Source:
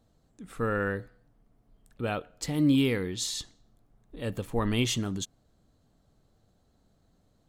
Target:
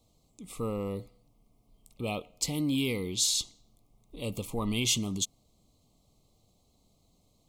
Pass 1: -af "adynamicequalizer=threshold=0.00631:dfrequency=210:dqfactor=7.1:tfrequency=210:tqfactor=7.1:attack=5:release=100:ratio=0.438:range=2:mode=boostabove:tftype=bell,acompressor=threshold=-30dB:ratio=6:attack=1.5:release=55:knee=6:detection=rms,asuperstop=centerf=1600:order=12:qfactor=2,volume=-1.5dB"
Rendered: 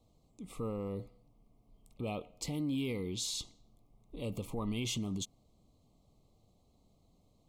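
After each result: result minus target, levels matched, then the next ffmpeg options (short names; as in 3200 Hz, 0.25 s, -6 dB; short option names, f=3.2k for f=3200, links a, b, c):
compressor: peak gain reduction +5.5 dB; 4000 Hz band -2.5 dB
-af "adynamicequalizer=threshold=0.00631:dfrequency=210:dqfactor=7.1:tfrequency=210:tqfactor=7.1:attack=5:release=100:ratio=0.438:range=2:mode=boostabove:tftype=bell,acompressor=threshold=-23.5dB:ratio=6:attack=1.5:release=55:knee=6:detection=rms,asuperstop=centerf=1600:order=12:qfactor=2,volume=-1.5dB"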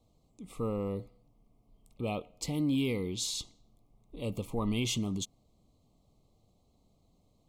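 4000 Hz band -3.5 dB
-af "adynamicequalizer=threshold=0.00631:dfrequency=210:dqfactor=7.1:tfrequency=210:tqfactor=7.1:attack=5:release=100:ratio=0.438:range=2:mode=boostabove:tftype=bell,acompressor=threshold=-23.5dB:ratio=6:attack=1.5:release=55:knee=6:detection=rms,asuperstop=centerf=1600:order=12:qfactor=2,highshelf=f=2.7k:g=10,volume=-1.5dB"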